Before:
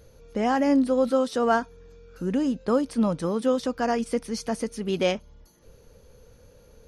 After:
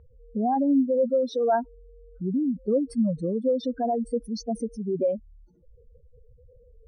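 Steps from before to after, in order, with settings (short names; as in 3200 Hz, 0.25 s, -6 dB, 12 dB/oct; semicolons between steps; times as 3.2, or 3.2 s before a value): spectral contrast raised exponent 3.4; low-pass opened by the level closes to 1500 Hz, open at -23 dBFS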